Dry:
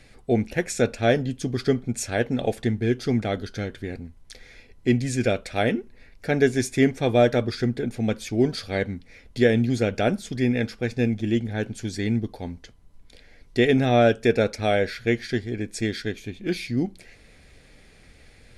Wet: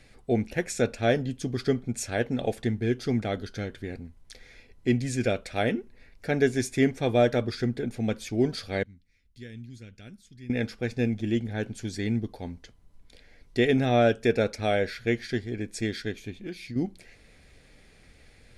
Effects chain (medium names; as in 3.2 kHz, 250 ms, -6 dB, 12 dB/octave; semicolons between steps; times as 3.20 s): 8.83–10.50 s: amplifier tone stack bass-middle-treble 6-0-2; 16.33–16.76 s: compression 4:1, threshold -32 dBFS, peak gain reduction 10.5 dB; trim -3.5 dB